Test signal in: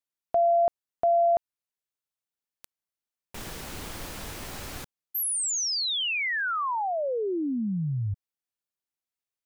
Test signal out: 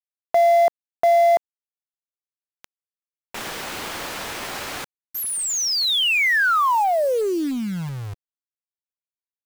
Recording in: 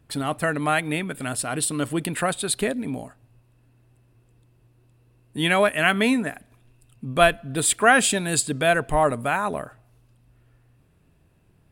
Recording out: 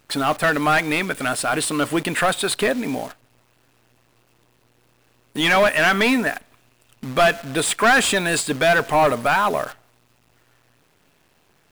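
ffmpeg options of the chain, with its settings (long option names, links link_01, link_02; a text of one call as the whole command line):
ffmpeg -i in.wav -filter_complex "[0:a]asplit=2[link_01][link_02];[link_02]highpass=frequency=720:poles=1,volume=24dB,asoftclip=type=tanh:threshold=-2dB[link_03];[link_01][link_03]amix=inputs=2:normalize=0,lowpass=frequency=3200:poles=1,volume=-6dB,acrusher=bits=6:dc=4:mix=0:aa=0.000001,volume=-5dB" out.wav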